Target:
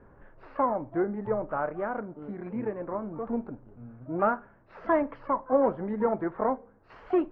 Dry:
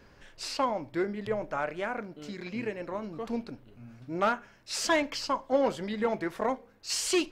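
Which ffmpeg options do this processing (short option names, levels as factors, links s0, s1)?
-filter_complex "[0:a]asplit=2[s0][s1];[s1]asetrate=88200,aresample=44100,atempo=0.5,volume=0.158[s2];[s0][s2]amix=inputs=2:normalize=0,lowpass=f=1400:w=0.5412,lowpass=f=1400:w=1.3066,volume=1.33"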